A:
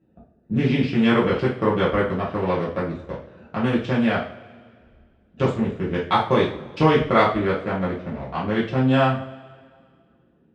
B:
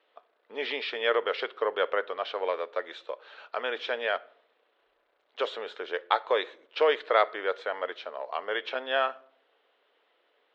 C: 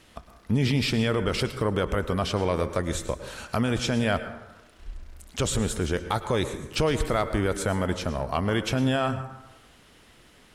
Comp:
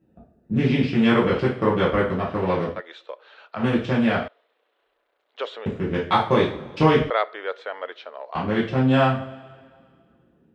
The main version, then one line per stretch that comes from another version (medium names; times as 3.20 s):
A
2.76–3.59 s: from B, crossfade 0.10 s
4.28–5.66 s: from B
7.10–8.35 s: from B
not used: C